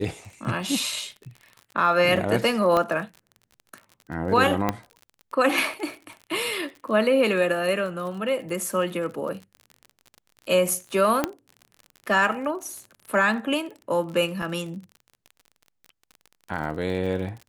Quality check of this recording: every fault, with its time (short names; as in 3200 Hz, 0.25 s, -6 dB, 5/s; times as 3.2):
crackle 42/s -34 dBFS
2.77 pop -11 dBFS
4.69 pop -9 dBFS
11.24 pop -8 dBFS
14.42 gap 3.9 ms